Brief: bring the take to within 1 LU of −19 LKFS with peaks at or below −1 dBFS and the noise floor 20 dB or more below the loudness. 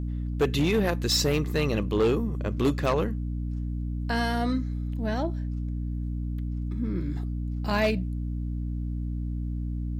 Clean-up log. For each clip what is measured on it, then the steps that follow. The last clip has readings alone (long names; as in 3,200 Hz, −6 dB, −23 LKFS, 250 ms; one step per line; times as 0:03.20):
share of clipped samples 0.8%; peaks flattened at −17.5 dBFS; mains hum 60 Hz; hum harmonics up to 300 Hz; level of the hum −28 dBFS; integrated loudness −28.5 LKFS; sample peak −17.5 dBFS; target loudness −19.0 LKFS
→ clipped peaks rebuilt −17.5 dBFS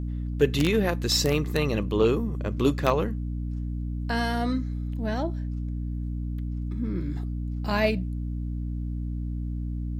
share of clipped samples 0.0%; mains hum 60 Hz; hum harmonics up to 300 Hz; level of the hum −28 dBFS
→ mains-hum notches 60/120/180/240/300 Hz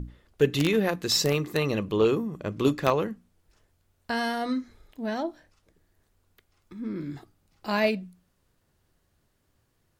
mains hum none found; integrated loudness −27.0 LKFS; sample peak −8.0 dBFS; target loudness −19.0 LKFS
→ level +8 dB
brickwall limiter −1 dBFS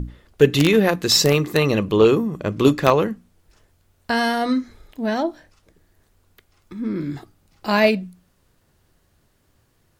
integrated loudness −19.0 LKFS; sample peak −1.0 dBFS; background noise floor −63 dBFS